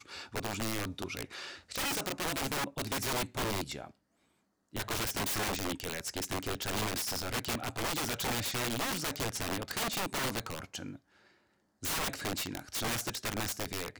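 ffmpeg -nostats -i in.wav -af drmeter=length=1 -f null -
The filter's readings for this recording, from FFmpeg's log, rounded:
Channel 1: DR: 3.5
Overall DR: 3.5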